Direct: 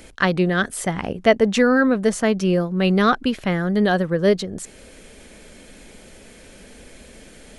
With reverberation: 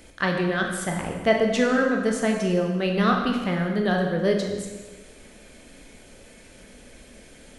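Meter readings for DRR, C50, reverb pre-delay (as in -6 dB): 1.0 dB, 4.0 dB, 7 ms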